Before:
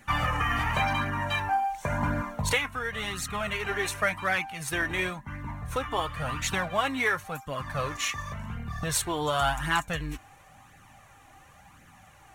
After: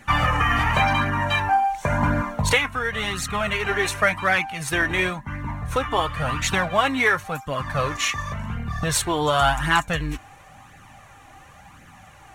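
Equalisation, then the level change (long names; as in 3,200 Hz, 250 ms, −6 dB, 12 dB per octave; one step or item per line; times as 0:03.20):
high-shelf EQ 10,000 Hz −7 dB
+7.0 dB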